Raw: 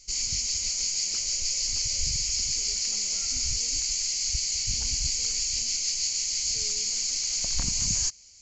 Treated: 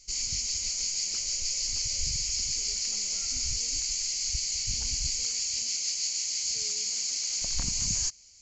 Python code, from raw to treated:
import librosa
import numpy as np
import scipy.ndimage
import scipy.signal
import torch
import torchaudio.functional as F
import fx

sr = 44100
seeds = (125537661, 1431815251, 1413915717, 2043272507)

y = fx.highpass(x, sr, hz=190.0, slope=6, at=(5.23, 7.42))
y = y * 10.0 ** (-2.5 / 20.0)